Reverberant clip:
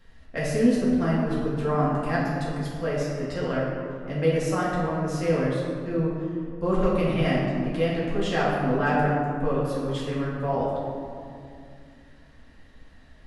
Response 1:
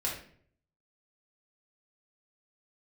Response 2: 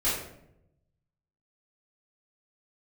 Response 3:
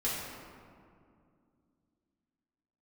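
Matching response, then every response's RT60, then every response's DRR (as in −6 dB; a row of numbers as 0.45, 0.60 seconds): 3; 0.55, 0.80, 2.3 seconds; −4.5, −12.0, −8.0 decibels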